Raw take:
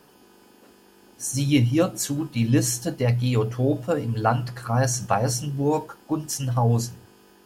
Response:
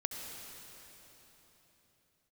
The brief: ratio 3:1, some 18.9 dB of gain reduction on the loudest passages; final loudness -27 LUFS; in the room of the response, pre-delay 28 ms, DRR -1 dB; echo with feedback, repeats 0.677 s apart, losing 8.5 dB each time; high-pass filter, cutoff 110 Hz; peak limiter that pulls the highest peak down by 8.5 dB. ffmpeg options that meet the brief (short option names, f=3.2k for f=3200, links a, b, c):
-filter_complex "[0:a]highpass=110,acompressor=threshold=-42dB:ratio=3,alimiter=level_in=8dB:limit=-24dB:level=0:latency=1,volume=-8dB,aecho=1:1:677|1354|2031|2708:0.376|0.143|0.0543|0.0206,asplit=2[a][b];[1:a]atrim=start_sample=2205,adelay=28[c];[b][c]afir=irnorm=-1:irlink=0,volume=-0.5dB[d];[a][d]amix=inputs=2:normalize=0,volume=10.5dB"